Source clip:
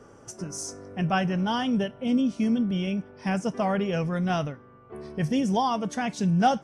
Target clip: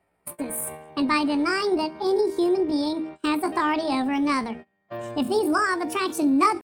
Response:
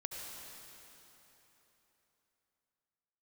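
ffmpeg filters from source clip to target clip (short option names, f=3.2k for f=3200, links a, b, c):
-filter_complex "[0:a]bandreject=f=50:t=h:w=6,bandreject=f=100:t=h:w=6,bandreject=f=150:t=h:w=6,bandreject=f=200:t=h:w=6,bandreject=f=250:t=h:w=6,bandreject=f=300:t=h:w=6,bandreject=f=350:t=h:w=6,bandreject=f=400:t=h:w=6,bandreject=f=450:t=h:w=6,bandreject=f=500:t=h:w=6,asetrate=70004,aresample=44100,atempo=0.629961,equalizer=f=64:w=1:g=7.5,agate=range=-26dB:threshold=-42dB:ratio=16:detection=peak,asplit=2[a][b];[b]acompressor=threshold=-33dB:ratio=6,volume=1dB[c];[a][c]amix=inputs=2:normalize=0"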